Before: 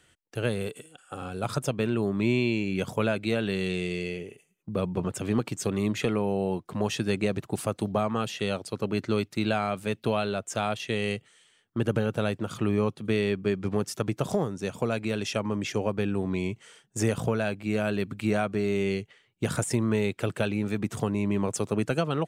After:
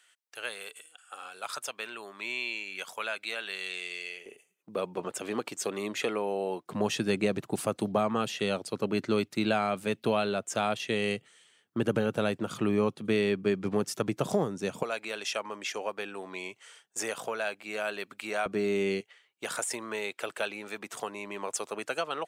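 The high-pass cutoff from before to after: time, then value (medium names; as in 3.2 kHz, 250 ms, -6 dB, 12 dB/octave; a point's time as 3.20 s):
1.1 kHz
from 4.26 s 410 Hz
from 6.66 s 160 Hz
from 14.83 s 660 Hz
from 18.46 s 230 Hz
from 19.01 s 650 Hz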